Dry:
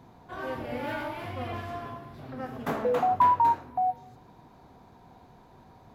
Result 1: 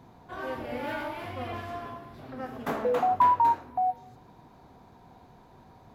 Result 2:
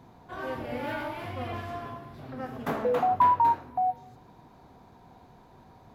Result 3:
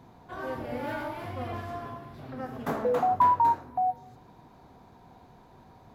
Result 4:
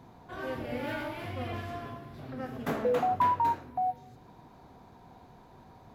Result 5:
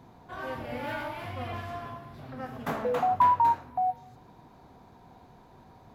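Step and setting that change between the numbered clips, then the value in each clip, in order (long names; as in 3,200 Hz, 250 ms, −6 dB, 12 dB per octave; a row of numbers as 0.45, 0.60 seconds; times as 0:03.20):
dynamic equaliser, frequency: 130, 7,300, 2,700, 950, 360 Hertz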